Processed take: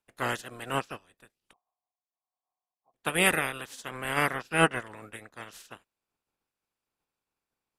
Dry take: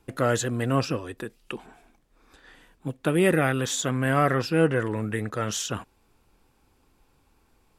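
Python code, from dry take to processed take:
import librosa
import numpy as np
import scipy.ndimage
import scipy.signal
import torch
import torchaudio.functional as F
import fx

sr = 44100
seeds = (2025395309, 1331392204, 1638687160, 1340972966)

y = fx.spec_clip(x, sr, under_db=21)
y = fx.formant_cascade(y, sr, vowel='a', at=(1.53, 2.94))
y = fx.upward_expand(y, sr, threshold_db=-35.0, expansion=2.5)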